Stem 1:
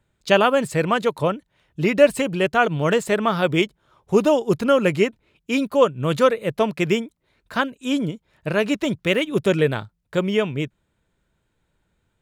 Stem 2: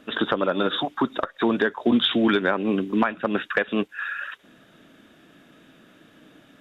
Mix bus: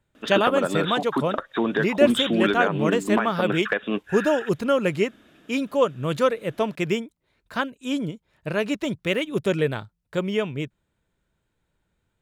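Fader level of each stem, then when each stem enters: -4.0, -2.0 dB; 0.00, 0.15 s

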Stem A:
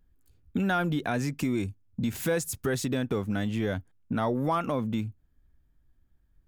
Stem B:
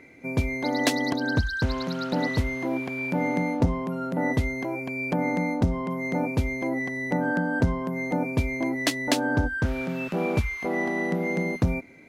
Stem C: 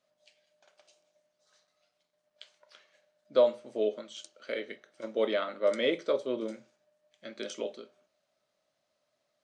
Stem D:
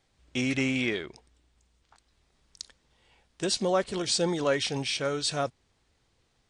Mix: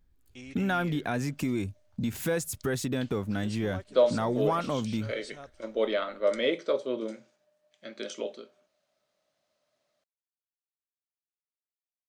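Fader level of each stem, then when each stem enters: -1.5 dB, off, +1.0 dB, -17.5 dB; 0.00 s, off, 0.60 s, 0.00 s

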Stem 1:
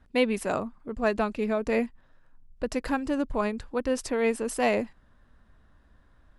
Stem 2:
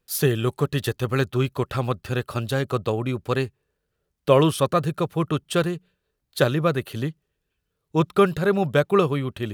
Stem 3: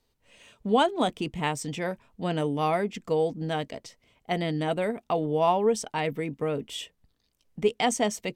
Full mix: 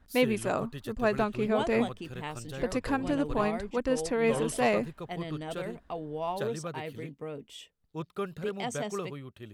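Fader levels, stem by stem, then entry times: -1.5, -17.0, -10.5 dB; 0.00, 0.00, 0.80 s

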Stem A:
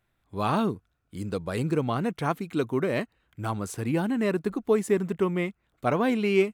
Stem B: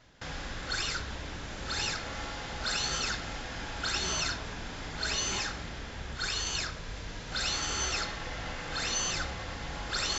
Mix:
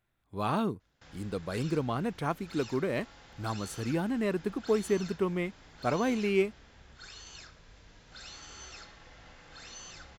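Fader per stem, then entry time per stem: -4.5, -15.5 dB; 0.00, 0.80 s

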